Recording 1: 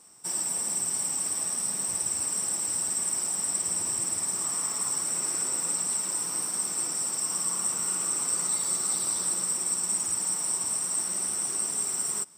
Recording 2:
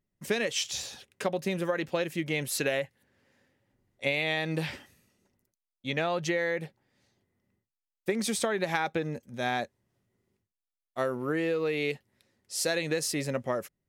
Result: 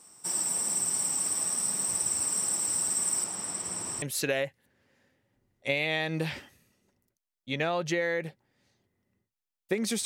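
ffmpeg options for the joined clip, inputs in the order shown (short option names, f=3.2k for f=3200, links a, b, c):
-filter_complex "[0:a]asettb=1/sr,asplit=3[a][b][c];[a]atrim=end=3.244[d];[b]atrim=start=3.24:end=4.02,asetpts=PTS-STARTPTS,afade=t=in:d=0.004:c=qsin,afade=t=out:st=0.776:d=0.004:c=qsin,lowpass=f=4k:p=1[e];[c]atrim=start=4.016[f];[d][e]acrossfade=d=0.004:c1=hsin:c2=qsin[g];[g][f]acrossfade=d=0.004:c1=qsin:c2=hsin,apad=whole_dur=10.05,atrim=end=10.05,atrim=end=4.022[h];[1:a]atrim=start=2.388:end=8.42[i];[h][i]acrossfade=d=0.004:c1=hsin:c2=hsin"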